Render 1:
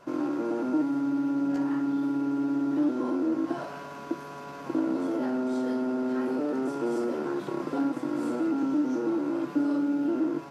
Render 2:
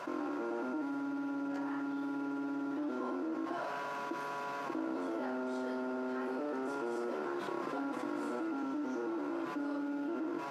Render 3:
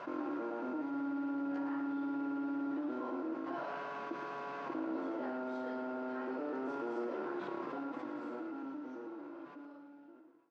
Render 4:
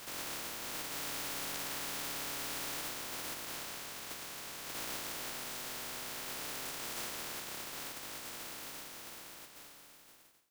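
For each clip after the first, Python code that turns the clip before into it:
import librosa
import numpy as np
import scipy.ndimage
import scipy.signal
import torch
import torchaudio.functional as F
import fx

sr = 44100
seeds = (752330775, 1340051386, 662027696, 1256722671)

y1 = fx.highpass(x, sr, hz=930.0, slope=6)
y1 = fx.high_shelf(y1, sr, hz=3000.0, db=-9.5)
y1 = fx.env_flatten(y1, sr, amount_pct=70)
y1 = y1 * 10.0 ** (-3.5 / 20.0)
y2 = fx.fade_out_tail(y1, sr, length_s=3.43)
y2 = fx.air_absorb(y2, sr, metres=170.0)
y2 = y2 + 10.0 ** (-10.0 / 20.0) * np.pad(y2, (int(111 * sr / 1000.0), 0))[:len(y2)]
y2 = y2 * 10.0 ** (-1.5 / 20.0)
y3 = fx.spec_flatten(y2, sr, power=0.12)
y3 = y3 * 10.0 ** (-2.5 / 20.0)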